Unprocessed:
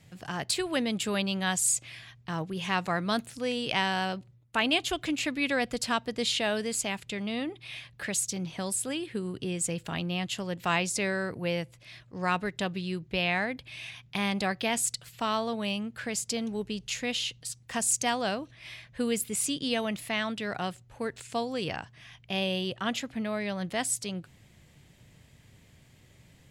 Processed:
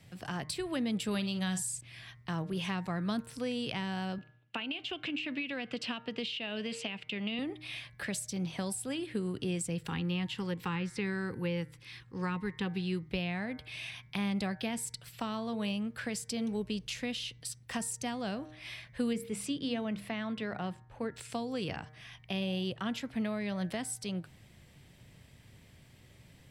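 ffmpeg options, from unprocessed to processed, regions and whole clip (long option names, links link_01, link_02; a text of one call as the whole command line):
ffmpeg -i in.wav -filter_complex "[0:a]asettb=1/sr,asplit=3[link_01][link_02][link_03];[link_01]atrim=end=1.114[link_04];[link_02]atrim=start=1.11:end=1.81,asetpts=PTS-STARTPTS,afade=type=in:duration=0.004:curve=qsin,afade=type=out:start_time=0.696:duration=0.004:curve=qsin,equalizer=frequency=7000:width_type=o:width=2.3:gain=7,asplit=2[link_05][link_06];[link_06]adelay=49,volume=-12dB[link_07];[link_05][link_07]amix=inputs=2:normalize=0,atrim=end_sample=30870[link_08];[link_03]atrim=start=1.806[link_09];[link_04][link_08]acrossfade=duration=0.004:curve1=hsin:curve2=qsin[link_10];[link_10][link_09]acrossfade=duration=0.004:curve1=qsin:curve2=hsin,asettb=1/sr,asplit=3[link_11][link_12][link_13];[link_11]atrim=end=4.184[link_14];[link_12]atrim=start=4.18:end=7.39,asetpts=PTS-STARTPTS,afade=type=in:duration=0.004:curve=qsin,afade=type=out:start_time=3.206:duration=0.004:curve=qsin,equalizer=frequency=2800:width=2.9:gain=13,acompressor=threshold=-26dB:ratio=4:attack=3.2:release=140:knee=1:detection=peak,highpass=160,lowpass=4400[link_15];[link_13]atrim=start=7.386[link_16];[link_14][link_15]acrossfade=duration=0.004:curve1=hsin:curve2=qsin[link_17];[link_17][link_16]acrossfade=duration=0.004:curve1=qsin:curve2=hsin,asettb=1/sr,asplit=3[link_18][link_19][link_20];[link_18]atrim=end=9.884[link_21];[link_19]atrim=start=9.88:end=13.09,asetpts=PTS-STARTPTS,afade=type=in:duration=0.004:curve=qsin,afade=type=out:start_time=3.206:duration=0.004:curve=qsin,asuperstop=centerf=640:order=8:qfactor=3,acrossover=split=3800[link_22][link_23];[link_23]acompressor=threshold=-49dB:ratio=4:attack=1:release=60[link_24];[link_22][link_24]amix=inputs=2:normalize=0[link_25];[link_20]atrim=start=13.086[link_26];[link_21][link_25]acrossfade=duration=0.004:curve1=hsin:curve2=qsin[link_27];[link_27][link_26]acrossfade=duration=0.004:curve1=qsin:curve2=hsin,asettb=1/sr,asplit=3[link_28][link_29][link_30];[link_28]atrim=end=19.134[link_31];[link_29]atrim=start=19.13:end=21.14,asetpts=PTS-STARTPTS,afade=type=in:duration=0.004:curve=qsin,afade=type=out:start_time=2.006:duration=0.004:curve=qsin,lowpass=frequency=2400:poles=1,bandreject=frequency=50:width_type=h:width=6,bandreject=frequency=100:width_type=h:width=6,bandreject=frequency=150:width_type=h:width=6,bandreject=frequency=200:width_type=h:width=6,bandreject=frequency=250:width_type=h:width=6,bandreject=frequency=300:width_type=h:width=6,bandreject=frequency=350:width_type=h:width=6[link_32];[link_30]atrim=start=21.136[link_33];[link_31][link_32]acrossfade=duration=0.004:curve1=hsin:curve2=qsin[link_34];[link_34][link_33]acrossfade=duration=0.004:curve1=qsin:curve2=hsin,bandreject=frequency=6800:width=7.2,bandreject=frequency=153.5:width_type=h:width=4,bandreject=frequency=307:width_type=h:width=4,bandreject=frequency=460.5:width_type=h:width=4,bandreject=frequency=614:width_type=h:width=4,bandreject=frequency=767.5:width_type=h:width=4,bandreject=frequency=921:width_type=h:width=4,bandreject=frequency=1074.5:width_type=h:width=4,bandreject=frequency=1228:width_type=h:width=4,bandreject=frequency=1381.5:width_type=h:width=4,bandreject=frequency=1535:width_type=h:width=4,bandreject=frequency=1688.5:width_type=h:width=4,bandreject=frequency=1842:width_type=h:width=4,bandreject=frequency=1995.5:width_type=h:width=4,bandreject=frequency=2149:width_type=h:width=4,bandreject=frequency=2302.5:width_type=h:width=4,acrossover=split=290[link_35][link_36];[link_36]acompressor=threshold=-36dB:ratio=6[link_37];[link_35][link_37]amix=inputs=2:normalize=0" out.wav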